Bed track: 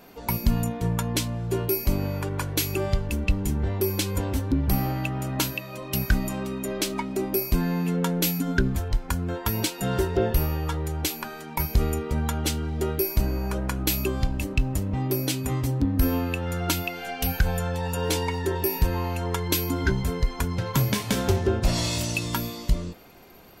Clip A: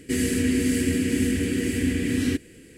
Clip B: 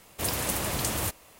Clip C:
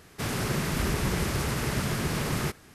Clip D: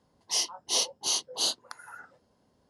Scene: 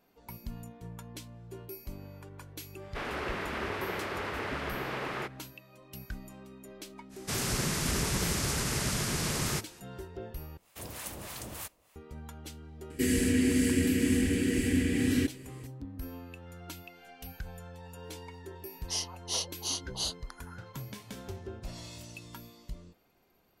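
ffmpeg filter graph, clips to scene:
-filter_complex "[3:a]asplit=2[s0][s1];[0:a]volume=0.112[s2];[s0]acrossover=split=310 3500:gain=0.0891 1 0.0891[s3][s4][s5];[s3][s4][s5]amix=inputs=3:normalize=0[s6];[s1]equalizer=f=7100:w=0.6:g=10[s7];[2:a]acrossover=split=740[s8][s9];[s8]aeval=exprs='val(0)*(1-0.7/2+0.7/2*cos(2*PI*3.3*n/s))':c=same[s10];[s9]aeval=exprs='val(0)*(1-0.7/2-0.7/2*cos(2*PI*3.3*n/s))':c=same[s11];[s10][s11]amix=inputs=2:normalize=0[s12];[s2]asplit=2[s13][s14];[s13]atrim=end=10.574[s15];[s12]atrim=end=1.39,asetpts=PTS-STARTPTS,volume=0.355[s16];[s14]atrim=start=11.956[s17];[s6]atrim=end=2.74,asetpts=PTS-STARTPTS,volume=0.841,afade=t=in:d=0.1,afade=t=out:st=2.64:d=0.1,adelay=2760[s18];[s7]atrim=end=2.74,asetpts=PTS-STARTPTS,volume=0.596,afade=t=in:d=0.05,afade=t=out:st=2.69:d=0.05,adelay=7090[s19];[1:a]atrim=end=2.77,asetpts=PTS-STARTPTS,volume=0.668,afade=t=in:d=0.004:c=hsin,afade=t=out:st=2.766:d=0.004:c=hsin,adelay=12900[s20];[4:a]atrim=end=2.69,asetpts=PTS-STARTPTS,volume=0.501,afade=t=in:d=0.004:c=hsin,afade=t=out:st=2.686:d=0.004:c=hsin,adelay=18590[s21];[s15][s16]acrossfade=d=0.004:c1=hsin:c2=hsin[s22];[s22][s17]acrossfade=d=0.004:c1=hsin:c2=hsin[s23];[s23][s18][s19][s20][s21]amix=inputs=5:normalize=0"

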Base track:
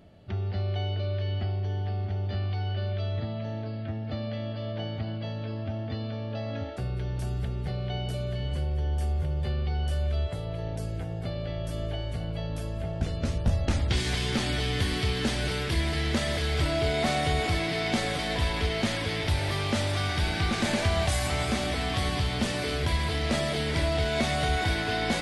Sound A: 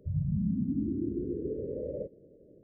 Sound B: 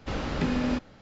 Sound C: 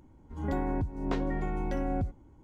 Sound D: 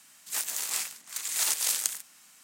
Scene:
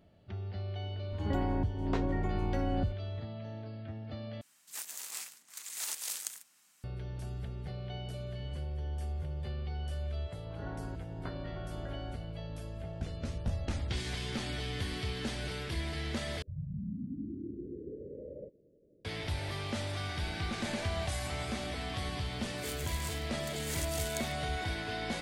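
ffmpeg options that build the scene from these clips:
-filter_complex "[3:a]asplit=2[s0][s1];[4:a]asplit=2[s2][s3];[0:a]volume=0.355[s4];[s1]lowpass=f=1500:t=q:w=3.9[s5];[s4]asplit=3[s6][s7][s8];[s6]atrim=end=4.414[s9];[s2]atrim=end=2.43,asetpts=PTS-STARTPTS,volume=0.299[s10];[s7]atrim=start=6.836:end=16.424[s11];[1:a]atrim=end=2.63,asetpts=PTS-STARTPTS,volume=0.355[s12];[s8]atrim=start=19.046[s13];[s0]atrim=end=2.43,asetpts=PTS-STARTPTS,volume=0.841,afade=t=in:d=0.004:c=hsin,afade=t=out:st=2.426:d=0.004:c=hsin,adelay=820[s14];[s5]atrim=end=2.43,asetpts=PTS-STARTPTS,volume=0.178,afade=t=in:d=0.004:c=hsin,afade=t=out:st=2.426:d=0.004:c=hsin,adelay=10140[s15];[s3]atrim=end=2.43,asetpts=PTS-STARTPTS,volume=0.211,afade=t=in:d=0.004:c=hsin,afade=t=out:st=2.426:d=0.004:c=hsin,adelay=22310[s16];[s9][s10]acrossfade=d=0.004:c1=hsin:c2=hsin[s17];[s17][s11]acrossfade=d=0.004:c1=hsin:c2=hsin[s18];[s18][s12]acrossfade=d=0.004:c1=hsin:c2=hsin[s19];[s19][s13]acrossfade=d=0.004:c1=hsin:c2=hsin[s20];[s20][s14][s15][s16]amix=inputs=4:normalize=0"

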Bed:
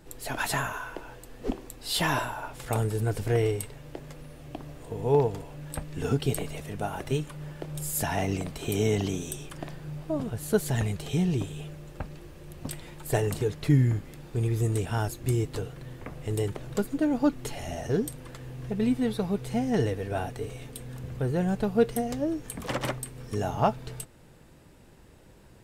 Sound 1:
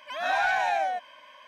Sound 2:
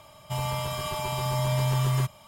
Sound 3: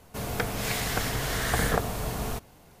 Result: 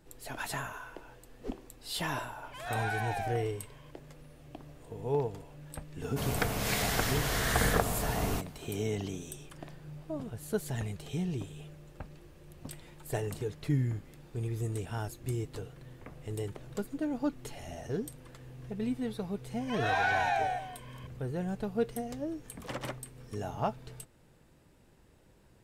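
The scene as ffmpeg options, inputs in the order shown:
-filter_complex "[1:a]asplit=2[s0][s1];[0:a]volume=0.398[s2];[s1]aecho=1:1:175:0.266[s3];[s0]atrim=end=1.47,asetpts=PTS-STARTPTS,volume=0.316,afade=t=in:d=0.004:c=hsin,afade=t=out:st=1.466:d=0.004:c=hsin,adelay=2440[s4];[3:a]atrim=end=2.8,asetpts=PTS-STARTPTS,volume=0.841,afade=t=in:d=0.004:c=hsin,afade=t=out:st=2.796:d=0.004:c=hsin,adelay=6020[s5];[s3]atrim=end=1.47,asetpts=PTS-STARTPTS,volume=0.631,afade=t=in:d=0.004:c=hsin,afade=t=out:st=1.466:d=0.004:c=hsin,adelay=19600[s6];[s2][s4][s5][s6]amix=inputs=4:normalize=0"

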